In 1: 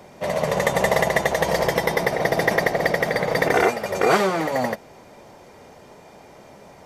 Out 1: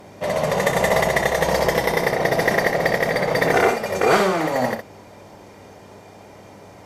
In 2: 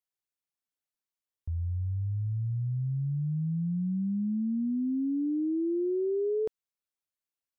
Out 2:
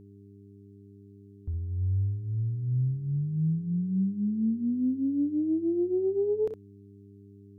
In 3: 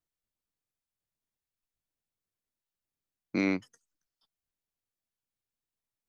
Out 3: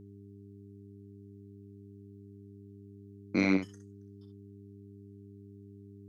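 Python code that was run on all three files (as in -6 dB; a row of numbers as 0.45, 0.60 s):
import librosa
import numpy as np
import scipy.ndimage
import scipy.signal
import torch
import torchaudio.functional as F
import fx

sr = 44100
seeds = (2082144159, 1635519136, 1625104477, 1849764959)

y = fx.room_early_taps(x, sr, ms=(32, 63), db=(-12.5, -7.5))
y = fx.cheby_harmonics(y, sr, harmonics=(2, 4, 5), levels_db=(-17, -21, -32), full_scale_db=-3.5)
y = fx.dmg_buzz(y, sr, base_hz=100.0, harmonics=4, level_db=-51.0, tilt_db=-3, odd_only=False)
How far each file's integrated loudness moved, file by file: +1.5, +2.0, +1.0 LU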